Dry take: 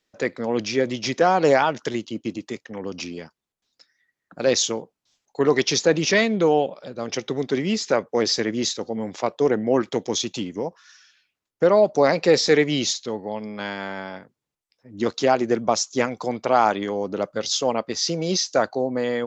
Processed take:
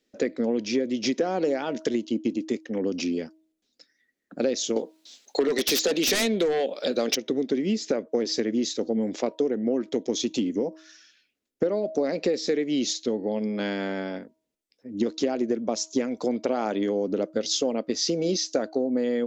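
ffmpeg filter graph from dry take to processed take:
-filter_complex "[0:a]asettb=1/sr,asplit=3[s0][s1][s2];[s0]atrim=end=4.764[s3];[s1]atrim=start=4.76:end=7.16,asetpts=PTS-STARTPTS,afade=t=in:d=0.004:c=qsin,afade=t=out:st=2.396:d=0.004:c=qsin,highpass=f=870:p=1,equalizer=f=3900:t=o:w=0.45:g=6,aeval=exprs='0.473*sin(PI/2*4.47*val(0)/0.473)':c=same[s4];[s2]atrim=start=7.156[s5];[s3][s4]acrossfade=d=0.004:c1=hsin:c2=qsin[s6];[s6][s5]acrossfade=d=0.004:c1=qsin:c2=hsin,equalizer=f=125:t=o:w=1:g=-10,equalizer=f=250:t=o:w=1:g=11,equalizer=f=500:t=o:w=1:g=5,equalizer=f=1000:t=o:w=1:g=-9,acompressor=threshold=0.0891:ratio=12,bandreject=f=317.5:t=h:w=4,bandreject=f=635:t=h:w=4,bandreject=f=952.5:t=h:w=4"

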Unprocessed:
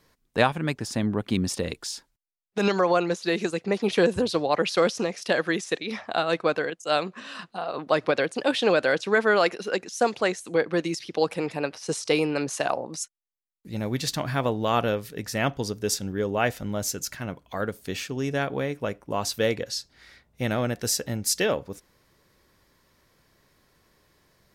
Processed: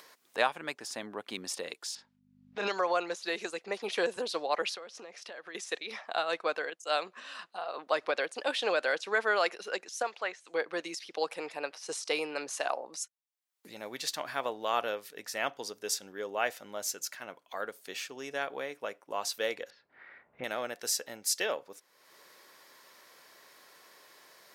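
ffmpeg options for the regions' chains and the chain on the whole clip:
-filter_complex "[0:a]asettb=1/sr,asplit=3[s0][s1][s2];[s0]atrim=end=1.954[s3];[s1]atrim=start=1.95:end=2.67,asetpts=PTS-STARTPTS,afade=t=in:d=0.004:c=qsin,afade=t=out:st=0.716:d=0.004:c=qsin,lowpass=3800,asplit=2[s4][s5];[s5]adelay=30,volume=0.668[s6];[s4][s6]amix=inputs=2:normalize=0,atrim=end_sample=31752,aeval=exprs='val(0)+0.00708*(sin(2*PI*50*n/s)+sin(2*PI*2*50*n/s)/2+sin(2*PI*3*50*n/s)/3+sin(2*PI*4*50*n/s)/4+sin(2*PI*5*50*n/s)/5)':c=same[s7];[s2]atrim=start=2.666[s8];[s3][s7]acrossfade=d=0.004:c1=hsin:c2=qsin[s9];[s9][s8]acrossfade=d=0.004:c1=qsin:c2=hsin,asettb=1/sr,asplit=3[s10][s11][s12];[s10]atrim=end=4.744[s13];[s11]atrim=start=4.74:end=5.55,asetpts=PTS-STARTPTS,afade=t=in:d=0.004:c=qsin,afade=t=out:st=0.806:d=0.004:c=qsin,aemphasis=mode=reproduction:type=50kf,acompressor=threshold=0.0224:ratio=8:attack=3.2:release=140:knee=1:detection=peak[s14];[s12]atrim=start=5.546[s15];[s13][s14]acrossfade=d=0.004:c1=hsin:c2=qsin[s16];[s16][s15]acrossfade=d=0.004:c1=qsin:c2=hsin,asettb=1/sr,asplit=3[s17][s18][s19];[s17]atrim=end=10.024[s20];[s18]atrim=start=10.02:end=10.54,asetpts=PTS-STARTPTS,afade=t=in:d=0.004:c=qsin,afade=t=out:st=0.516:d=0.004:c=qsin,highpass=100,lowpass=6500,equalizer=f=230:t=o:w=2.9:g=-8.5,acrossover=split=3100[s21][s22];[s22]acompressor=threshold=0.00316:ratio=4:attack=1:release=60[s23];[s21][s23]amix=inputs=2:normalize=0[s24];[s19]atrim=start=10.536[s25];[s20][s24]acrossfade=d=0.004:c1=hsin:c2=qsin[s26];[s26][s25]acrossfade=d=0.004:c1=qsin:c2=hsin,asettb=1/sr,asplit=3[s27][s28][s29];[s27]atrim=end=19.704[s30];[s28]atrim=start=19.7:end=20.44,asetpts=PTS-STARTPTS,afade=t=in:d=0.004:c=qsin,afade=t=out:st=0.736:d=0.004:c=qsin,lowpass=f=2100:w=0.5412,lowpass=f=2100:w=1.3066,lowshelf=f=200:g=11.5[s31];[s29]atrim=start=20.436[s32];[s30][s31]acrossfade=d=0.004:c1=hsin:c2=qsin[s33];[s33][s32]acrossfade=d=0.004:c1=qsin:c2=hsin,highpass=550,acompressor=mode=upward:threshold=0.0112:ratio=2.5,volume=0.562"

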